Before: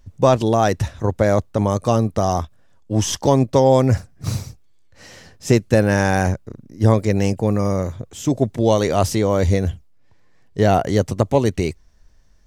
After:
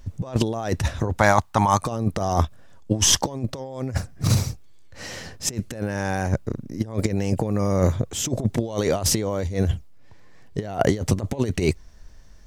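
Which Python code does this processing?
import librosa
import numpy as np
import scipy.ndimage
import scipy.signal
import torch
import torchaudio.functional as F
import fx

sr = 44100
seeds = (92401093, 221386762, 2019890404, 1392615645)

y = fx.low_shelf_res(x, sr, hz=660.0, db=-8.5, q=3.0, at=(1.18, 1.85))
y = fx.over_compress(y, sr, threshold_db=-22.0, ratio=-0.5)
y = y * 10.0 ** (1.0 / 20.0)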